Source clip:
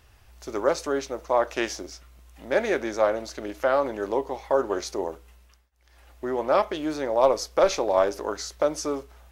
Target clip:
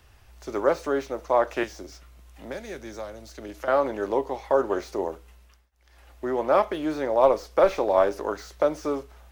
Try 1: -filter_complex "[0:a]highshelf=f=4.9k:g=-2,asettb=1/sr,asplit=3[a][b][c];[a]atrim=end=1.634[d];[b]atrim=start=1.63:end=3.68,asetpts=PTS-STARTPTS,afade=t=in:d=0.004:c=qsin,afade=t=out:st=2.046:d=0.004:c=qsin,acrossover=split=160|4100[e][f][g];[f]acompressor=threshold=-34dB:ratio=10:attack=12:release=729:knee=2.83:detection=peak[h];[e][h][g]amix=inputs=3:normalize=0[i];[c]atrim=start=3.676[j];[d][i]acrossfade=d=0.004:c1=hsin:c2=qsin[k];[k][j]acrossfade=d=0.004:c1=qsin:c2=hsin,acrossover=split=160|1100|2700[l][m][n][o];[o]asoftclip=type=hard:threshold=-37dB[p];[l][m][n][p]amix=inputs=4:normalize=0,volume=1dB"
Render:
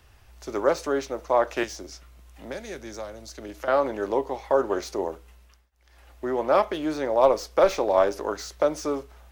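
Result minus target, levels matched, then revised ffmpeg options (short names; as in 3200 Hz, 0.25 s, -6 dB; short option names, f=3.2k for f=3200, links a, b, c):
hard clip: distortion -7 dB
-filter_complex "[0:a]highshelf=f=4.9k:g=-2,asettb=1/sr,asplit=3[a][b][c];[a]atrim=end=1.634[d];[b]atrim=start=1.63:end=3.68,asetpts=PTS-STARTPTS,afade=t=in:d=0.004:c=qsin,afade=t=out:st=2.046:d=0.004:c=qsin,acrossover=split=160|4100[e][f][g];[f]acompressor=threshold=-34dB:ratio=10:attack=12:release=729:knee=2.83:detection=peak[h];[e][h][g]amix=inputs=3:normalize=0[i];[c]atrim=start=3.676[j];[d][i]acrossfade=d=0.004:c1=hsin:c2=qsin[k];[k][j]acrossfade=d=0.004:c1=qsin:c2=hsin,acrossover=split=160|1100|2700[l][m][n][o];[o]asoftclip=type=hard:threshold=-48dB[p];[l][m][n][p]amix=inputs=4:normalize=0,volume=1dB"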